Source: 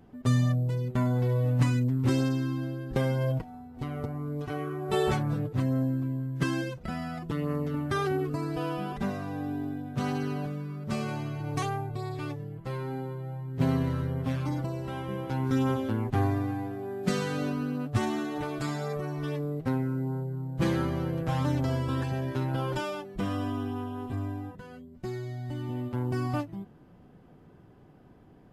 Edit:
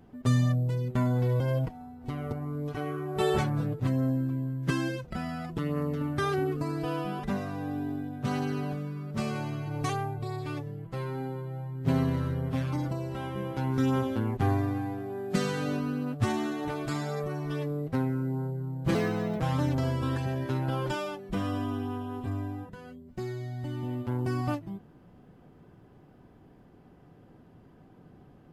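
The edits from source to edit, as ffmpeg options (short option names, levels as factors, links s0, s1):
-filter_complex "[0:a]asplit=4[s0][s1][s2][s3];[s0]atrim=end=1.402[s4];[s1]atrim=start=3.128:end=20.684[s5];[s2]atrim=start=20.68:end=21.26,asetpts=PTS-STARTPTS,asetrate=56889,aresample=44100[s6];[s3]atrim=start=21.256[s7];[s4][s5]acrossfade=d=0.004:c1=hsin:c2=hsin[s8];[s8][s6]acrossfade=d=0.004:c1=hsin:c2=hsin[s9];[s9][s7]acrossfade=d=0.004:c1=hsin:c2=hsin"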